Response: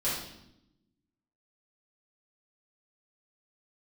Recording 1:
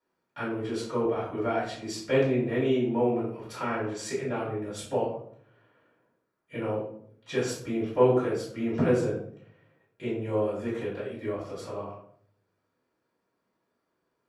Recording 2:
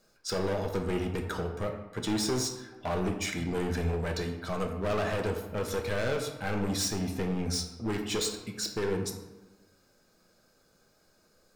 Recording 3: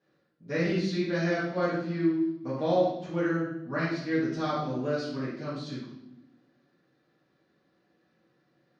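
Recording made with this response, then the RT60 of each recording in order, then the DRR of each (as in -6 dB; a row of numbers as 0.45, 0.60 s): 3; 0.60, 1.2, 0.80 s; -10.0, 3.5, -10.5 dB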